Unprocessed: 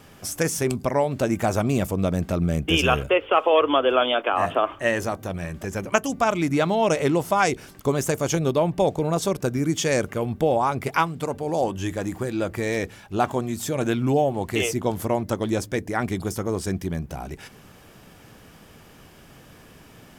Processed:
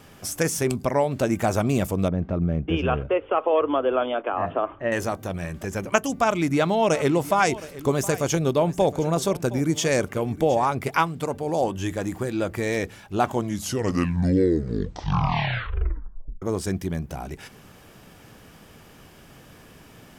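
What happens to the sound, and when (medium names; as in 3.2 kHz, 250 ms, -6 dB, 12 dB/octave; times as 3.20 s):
2.08–4.92 s: tape spacing loss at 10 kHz 42 dB
6.18–10.66 s: delay 716 ms -17 dB
13.22 s: tape stop 3.20 s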